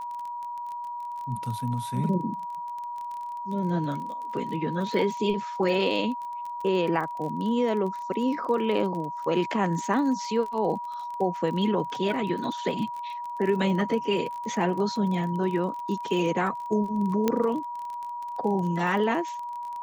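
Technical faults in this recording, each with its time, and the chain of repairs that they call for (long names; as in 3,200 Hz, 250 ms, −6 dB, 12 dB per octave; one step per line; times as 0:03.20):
surface crackle 29 per second −33 dBFS
whistle 960 Hz −32 dBFS
0:17.28: click −10 dBFS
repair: click removal
notch filter 960 Hz, Q 30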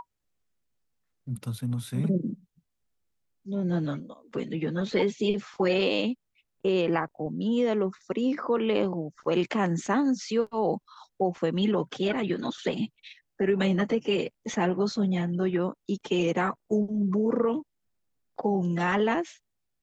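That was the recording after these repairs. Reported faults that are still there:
none of them is left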